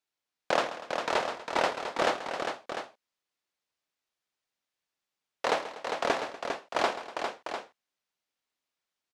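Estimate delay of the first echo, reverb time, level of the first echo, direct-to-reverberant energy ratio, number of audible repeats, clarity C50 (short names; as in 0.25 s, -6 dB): 0.134 s, none, -14.0 dB, none, 4, none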